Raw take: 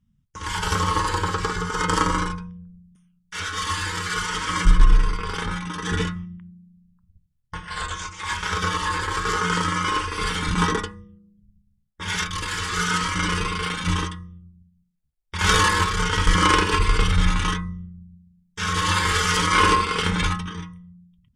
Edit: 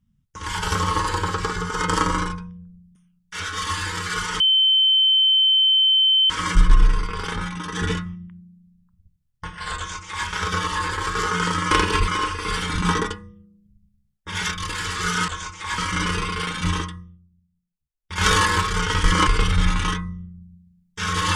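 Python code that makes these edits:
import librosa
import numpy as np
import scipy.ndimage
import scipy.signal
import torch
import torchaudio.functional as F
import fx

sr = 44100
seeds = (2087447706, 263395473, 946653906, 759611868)

y = fx.edit(x, sr, fx.insert_tone(at_s=4.4, length_s=1.9, hz=3080.0, db=-13.5),
    fx.duplicate(start_s=7.87, length_s=0.5, to_s=13.01),
    fx.fade_down_up(start_s=14.21, length_s=1.27, db=-9.0, fade_s=0.25),
    fx.move(start_s=16.5, length_s=0.37, to_s=9.81), tone=tone)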